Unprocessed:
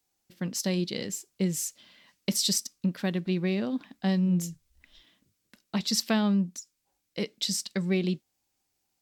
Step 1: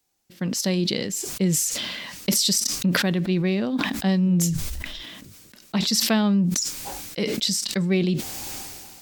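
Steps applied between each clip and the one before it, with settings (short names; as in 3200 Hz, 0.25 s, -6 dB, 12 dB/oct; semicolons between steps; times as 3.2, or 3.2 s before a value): sustainer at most 29 dB/s; gain +4.5 dB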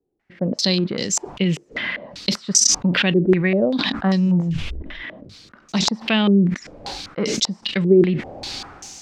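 maximiser +13 dB; stepped low-pass 5.1 Hz 400–6300 Hz; gain -10.5 dB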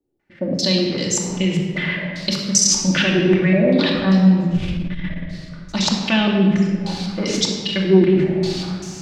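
shoebox room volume 2300 m³, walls mixed, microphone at 2.5 m; core saturation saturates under 170 Hz; gain -2 dB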